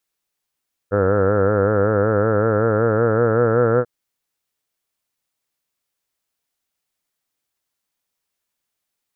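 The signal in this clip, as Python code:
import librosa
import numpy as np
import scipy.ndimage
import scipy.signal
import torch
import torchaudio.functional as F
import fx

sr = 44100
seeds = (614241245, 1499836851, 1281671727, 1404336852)

y = fx.vowel(sr, seeds[0], length_s=2.94, word='heard', hz=97.3, glide_st=3.5, vibrato_hz=5.3, vibrato_st=0.9)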